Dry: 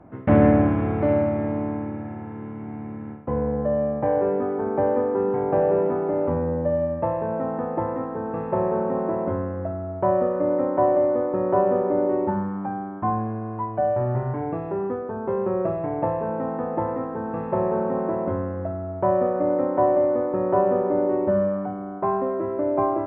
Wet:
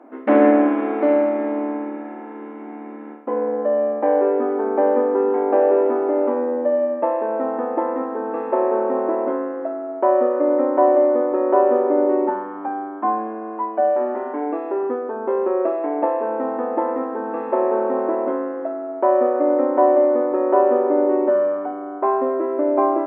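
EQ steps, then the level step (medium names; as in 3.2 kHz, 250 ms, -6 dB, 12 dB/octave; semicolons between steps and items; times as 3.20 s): brick-wall FIR high-pass 230 Hz; +4.5 dB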